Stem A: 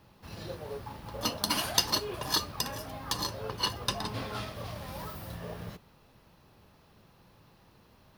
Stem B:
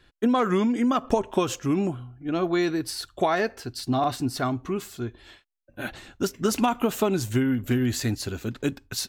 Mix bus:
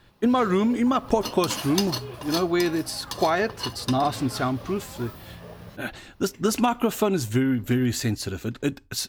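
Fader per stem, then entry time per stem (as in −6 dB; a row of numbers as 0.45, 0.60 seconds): −1.5, +1.0 decibels; 0.00, 0.00 seconds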